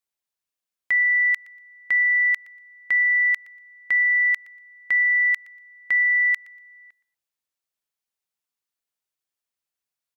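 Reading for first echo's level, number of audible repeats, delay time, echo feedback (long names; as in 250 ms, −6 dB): −21.5 dB, 2, 119 ms, 23%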